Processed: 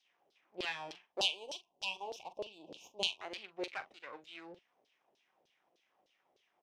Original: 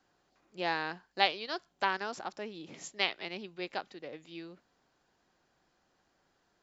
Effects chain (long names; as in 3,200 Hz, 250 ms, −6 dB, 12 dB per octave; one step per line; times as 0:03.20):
lower of the sound and its delayed copy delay 0.35 ms
0:01.20–0:03.21: elliptic band-stop filter 990–2,700 Hz, stop band 40 dB
auto-filter band-pass saw down 3.3 Hz 450–4,500 Hz
double-tracking delay 42 ms −14 dB
level +7.5 dB